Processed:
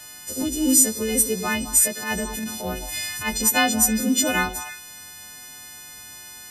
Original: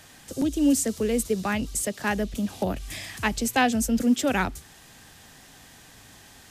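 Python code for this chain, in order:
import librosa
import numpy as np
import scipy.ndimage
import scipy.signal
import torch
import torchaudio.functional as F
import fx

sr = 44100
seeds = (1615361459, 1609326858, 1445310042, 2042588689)

y = fx.freq_snap(x, sr, grid_st=3)
y = fx.echo_stepped(y, sr, ms=105, hz=330.0, octaves=1.4, feedback_pct=70, wet_db=-7.5)
y = fx.transient(y, sr, attack_db=-11, sustain_db=2, at=(1.87, 3.45))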